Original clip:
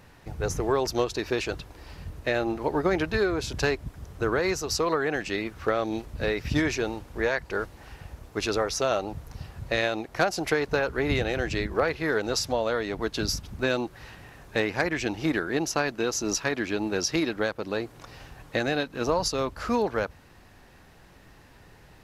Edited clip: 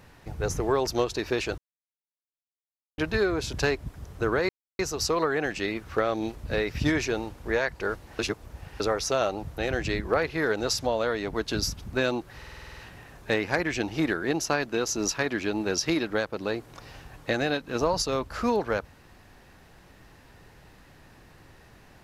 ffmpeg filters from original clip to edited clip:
ffmpeg -i in.wav -filter_complex "[0:a]asplit=15[link_01][link_02][link_03][link_04][link_05][link_06][link_07][link_08][link_09][link_10][link_11][link_12][link_13][link_14][link_15];[link_01]atrim=end=1.58,asetpts=PTS-STARTPTS,afade=type=out:start_time=1.576:duration=0.004:curve=hsin[link_16];[link_02]atrim=start=1.58:end=2.98,asetpts=PTS-STARTPTS,volume=0[link_17];[link_03]atrim=start=2.98:end=4.49,asetpts=PTS-STARTPTS,afade=type=in:duration=0.004:curve=hsin,afade=type=out:start_time=1.506:duration=0.004:curve=hsin,apad=pad_dur=0.3[link_18];[link_04]atrim=start=4.49:end=7.892,asetpts=PTS-STARTPTS,afade=type=in:duration=0.004:curve=hsin[link_19];[link_05]atrim=start=7.888:end=8.502,asetpts=PTS-STARTPTS,areverse[link_20];[link_06]atrim=start=8.498:end=9.282[link_21];[link_07]atrim=start=11.238:end=14.082[link_22];[link_08]atrim=start=14.028:end=14.082[link_23];[link_09]atrim=start=14.028:end=14.082[link_24];[link_10]atrim=start=14.028:end=14.082[link_25];[link_11]atrim=start=14.028:end=14.082[link_26];[link_12]atrim=start=14.028:end=14.082[link_27];[link_13]atrim=start=14.028:end=14.082[link_28];[link_14]atrim=start=14.028:end=14.082[link_29];[link_15]atrim=start=14.028[link_30];[link_16][link_17][link_18][link_19]concat=n=4:v=0:a=1[link_31];[link_31][link_20]acrossfade=duration=0.004:curve1=hsin:curve2=hsin[link_32];[link_32][link_21]acrossfade=duration=0.004:curve1=hsin:curve2=hsin[link_33];[link_33][link_22]acrossfade=duration=0.004:curve1=hsin:curve2=hsin[link_34];[link_34][link_23]acrossfade=duration=0.004:curve1=hsin:curve2=hsin[link_35];[link_35][link_24]acrossfade=duration=0.004:curve1=hsin:curve2=hsin[link_36];[link_36][link_25]acrossfade=duration=0.004:curve1=hsin:curve2=hsin[link_37];[link_37][link_26]acrossfade=duration=0.004:curve1=hsin:curve2=hsin[link_38];[link_38][link_27]acrossfade=duration=0.004:curve1=hsin:curve2=hsin[link_39];[link_39][link_28]acrossfade=duration=0.004:curve1=hsin:curve2=hsin[link_40];[link_40][link_29]acrossfade=duration=0.004:curve1=hsin:curve2=hsin[link_41];[link_41][link_30]acrossfade=duration=0.004:curve1=hsin:curve2=hsin" out.wav

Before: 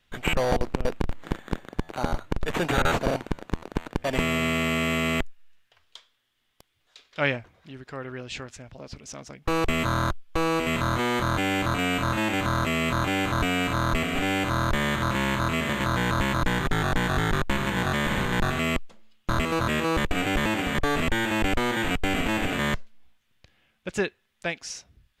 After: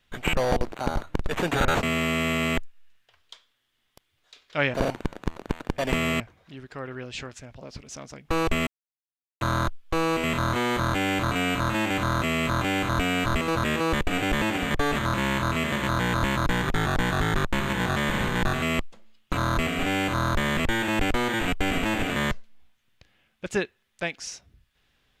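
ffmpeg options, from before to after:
ffmpeg -i in.wav -filter_complex "[0:a]asplit=10[link_01][link_02][link_03][link_04][link_05][link_06][link_07][link_08][link_09][link_10];[link_01]atrim=end=0.722[link_11];[link_02]atrim=start=1.888:end=3.002[link_12];[link_03]atrim=start=4.458:end=7.372[link_13];[link_04]atrim=start=2.998:end=4.462[link_14];[link_05]atrim=start=7.368:end=9.84,asetpts=PTS-STARTPTS,afade=type=out:start_time=2.468:duration=0.004:curve=hsin,apad=pad_dur=0.74[link_15];[link_06]atrim=start=9.84:end=13.692,asetpts=PTS-STARTPTS,afade=type=in:duration=0.004:curve=hsin[link_16];[link_07]atrim=start=19.298:end=21.002[link_17];[link_08]atrim=start=14.928:end=19.302[link_18];[link_09]atrim=start=13.688:end=14.932[link_19];[link_10]atrim=start=20.998[link_20];[link_11][link_12]acrossfade=duration=0.004:curve1=hsin:curve2=hsin[link_21];[link_21][link_13]acrossfade=duration=0.004:curve1=hsin:curve2=hsin[link_22];[link_22][link_14]acrossfade=duration=0.004:curve1=hsin:curve2=hsin[link_23];[link_15][link_16]concat=n=2:v=0:a=1[link_24];[link_23][link_24]acrossfade=duration=0.004:curve1=hsin:curve2=hsin[link_25];[link_25][link_17]acrossfade=duration=0.004:curve1=hsin:curve2=hsin[link_26];[link_26][link_18]acrossfade=duration=0.004:curve1=hsin:curve2=hsin[link_27];[link_27][link_19]acrossfade=duration=0.004:curve1=hsin:curve2=hsin[link_28];[link_28][link_20]acrossfade=duration=0.004:curve1=hsin:curve2=hsin" out.wav

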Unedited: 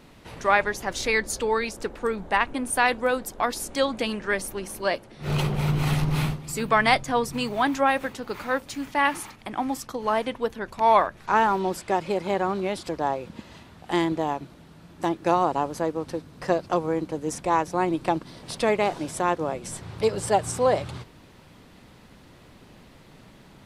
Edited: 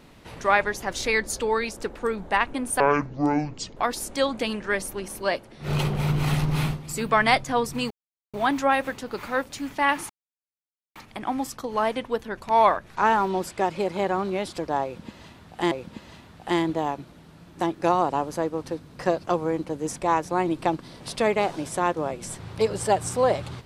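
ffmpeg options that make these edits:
ffmpeg -i in.wav -filter_complex "[0:a]asplit=6[link_01][link_02][link_03][link_04][link_05][link_06];[link_01]atrim=end=2.804[link_07];[link_02]atrim=start=2.8:end=3.36,asetpts=PTS-STARTPTS,asetrate=25578,aresample=44100,atrim=end_sample=42579,asetpts=PTS-STARTPTS[link_08];[link_03]atrim=start=3.356:end=7.5,asetpts=PTS-STARTPTS,afade=type=out:start_time=4.14:duration=0.004:curve=hsin,apad=pad_dur=0.43[link_09];[link_04]atrim=start=7.5:end=9.26,asetpts=PTS-STARTPTS,afade=type=in:duration=0.004:curve=hsin,afade=type=out:start_time=1.756:duration=0.004:curve=hsin,apad=pad_dur=0.86[link_10];[link_05]atrim=start=9.26:end=14.022,asetpts=PTS-STARTPTS,afade=type=in:duration=0.004:curve=hsin[link_11];[link_06]atrim=start=13.138[link_12];[link_07][link_08]acrossfade=duration=0.004:curve1=hsin:curve2=hsin[link_13];[link_09][link_10][link_11]concat=n=3:v=0:a=1[link_14];[link_13][link_14]acrossfade=duration=0.004:curve1=hsin:curve2=hsin[link_15];[link_15][link_12]acrossfade=duration=0.004:curve1=hsin:curve2=hsin" out.wav

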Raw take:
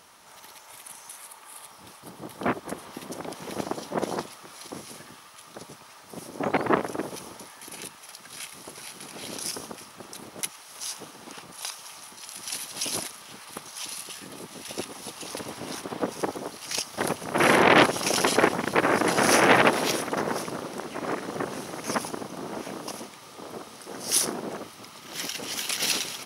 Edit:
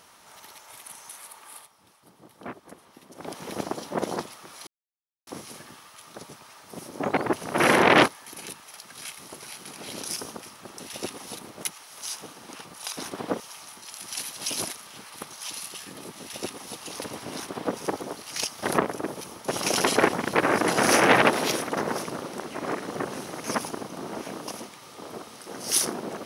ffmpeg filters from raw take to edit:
ffmpeg -i in.wav -filter_complex "[0:a]asplit=12[link_01][link_02][link_03][link_04][link_05][link_06][link_07][link_08][link_09][link_10][link_11][link_12];[link_01]atrim=end=1.69,asetpts=PTS-STARTPTS,afade=type=out:start_time=1.56:duration=0.13:silence=0.251189[link_13];[link_02]atrim=start=1.69:end=3.15,asetpts=PTS-STARTPTS,volume=-12dB[link_14];[link_03]atrim=start=3.15:end=4.67,asetpts=PTS-STARTPTS,afade=type=in:duration=0.13:silence=0.251189,afade=type=out:start_time=1.516:duration=0.004:curve=hsin,apad=pad_dur=0.6[link_15];[link_04]atrim=start=4.67:end=6.732,asetpts=PTS-STARTPTS,afade=type=in:duration=0.004:curve=hsin[link_16];[link_05]atrim=start=17.128:end=17.882[link_17];[link_06]atrim=start=7.428:end=10.152[link_18];[link_07]atrim=start=14.548:end=15.122[link_19];[link_08]atrim=start=10.148:end=11.752[link_20];[link_09]atrim=start=15.688:end=16.122[link_21];[link_10]atrim=start=11.748:end=17.132[link_22];[link_11]atrim=start=6.728:end=7.432[link_23];[link_12]atrim=start=17.878[link_24];[link_13][link_14][link_15][link_16]concat=n=4:v=0:a=1[link_25];[link_25][link_17]acrossfade=duration=0.004:curve1=hsin:curve2=hsin[link_26];[link_26][link_18]acrossfade=duration=0.004:curve1=hsin:curve2=hsin[link_27];[link_27][link_19]acrossfade=duration=0.004:curve1=hsin:curve2=hsin[link_28];[link_28][link_20]acrossfade=duration=0.004:curve1=hsin:curve2=hsin[link_29];[link_29][link_21]acrossfade=duration=0.004:curve1=hsin:curve2=hsin[link_30];[link_30][link_22]acrossfade=duration=0.004:curve1=hsin:curve2=hsin[link_31];[link_31][link_23]acrossfade=duration=0.004:curve1=hsin:curve2=hsin[link_32];[link_32][link_24]acrossfade=duration=0.004:curve1=hsin:curve2=hsin" out.wav

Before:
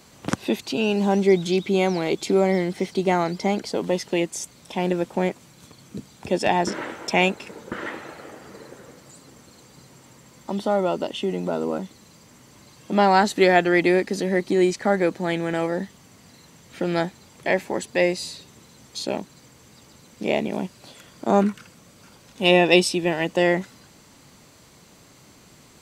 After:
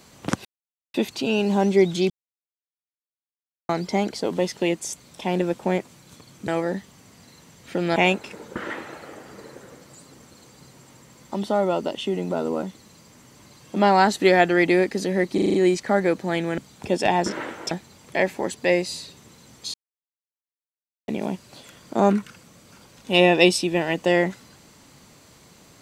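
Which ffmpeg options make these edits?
ffmpeg -i in.wav -filter_complex "[0:a]asplit=15[link_01][link_02][link_03][link_04][link_05][link_06][link_07][link_08][link_09][link_10][link_11][link_12][link_13][link_14][link_15];[link_01]atrim=end=0.45,asetpts=PTS-STARTPTS,afade=type=out:start_time=0.446:duration=0.004:curve=hsin,apad=pad_dur=0.49[link_16];[link_02]atrim=start=0.45:end=1.61,asetpts=PTS-STARTPTS,afade=type=in:duration=0.004:curve=hsin,afade=type=out:start_time=1.156:duration=0.004:curve=hsin[link_17];[link_03]atrim=start=1.61:end=3.2,asetpts=PTS-STARTPTS,volume=0[link_18];[link_04]atrim=start=3.2:end=5.992,asetpts=PTS-STARTPTS,afade=type=in:duration=0.004:curve=hsin[link_19];[link_05]atrim=start=15.538:end=17.022[link_20];[link_06]atrim=start=7.118:end=14.542[link_21];[link_07]atrim=start=14.498:end=14.542[link_22];[link_08]atrim=start=14.498:end=14.542[link_23];[link_09]atrim=start=14.498:end=14.542[link_24];[link_10]atrim=start=14.498:end=14.542[link_25];[link_11]atrim=start=14.498:end=15.542[link_26];[link_12]atrim=start=5.988:end=7.122[link_27];[link_13]atrim=start=17.018:end=19.05,asetpts=PTS-STARTPTS,afade=type=out:start_time=2.028:duration=0.004:curve=hsin[link_28];[link_14]atrim=start=19.05:end=20.39,asetpts=PTS-STARTPTS,volume=0[link_29];[link_15]atrim=start=20.39,asetpts=PTS-STARTPTS,afade=type=in:duration=0.004:curve=hsin[link_30];[link_16][link_17][link_18][link_19]concat=n=4:v=0:a=1[link_31];[link_31][link_20]acrossfade=duration=0.004:curve1=hsin:curve2=hsin[link_32];[link_32][link_21]acrossfade=duration=0.004:curve1=hsin:curve2=hsin[link_33];[link_33][link_22]acrossfade=duration=0.004:curve1=hsin:curve2=hsin[link_34];[link_34][link_23]acrossfade=duration=0.004:curve1=hsin:curve2=hsin[link_35];[link_35][link_24]acrossfade=duration=0.004:curve1=hsin:curve2=hsin[link_36];[link_36][link_25]acrossfade=duration=0.004:curve1=hsin:curve2=hsin[link_37];[link_37][link_26]acrossfade=duration=0.004:curve1=hsin:curve2=hsin[link_38];[link_38][link_27]acrossfade=duration=0.004:curve1=hsin:curve2=hsin[link_39];[link_28][link_29][link_30]concat=n=3:v=0:a=1[link_40];[link_39][link_40]acrossfade=duration=0.004:curve1=hsin:curve2=hsin" out.wav

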